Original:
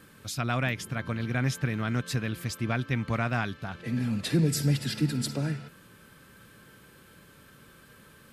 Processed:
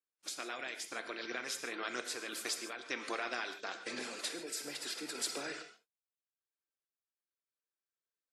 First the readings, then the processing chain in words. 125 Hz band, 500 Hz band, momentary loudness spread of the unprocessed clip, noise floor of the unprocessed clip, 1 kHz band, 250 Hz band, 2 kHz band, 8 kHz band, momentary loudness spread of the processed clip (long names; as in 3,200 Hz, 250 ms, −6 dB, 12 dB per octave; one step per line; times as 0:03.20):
below −40 dB, −8.0 dB, 8 LU, −55 dBFS, −7.5 dB, −18.5 dB, −6.0 dB, −2.5 dB, 5 LU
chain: compressor on every frequency bin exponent 0.6
low-pass filter 9,000 Hz 12 dB per octave
noise gate −31 dBFS, range −55 dB
Chebyshev high-pass filter 370 Hz, order 3
reverb reduction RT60 0.75 s
gate on every frequency bin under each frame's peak −30 dB strong
high-shelf EQ 4,000 Hz +10.5 dB
downward compressor 2 to 1, threshold −32 dBFS, peak gain reduction 7 dB
phase shifter 1.5 Hz, delay 4.5 ms, feedback 28%
sample-and-hold tremolo
reverb whose tail is shaped and stops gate 170 ms flat, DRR 7 dB
level −5 dB
WMA 64 kbit/s 44,100 Hz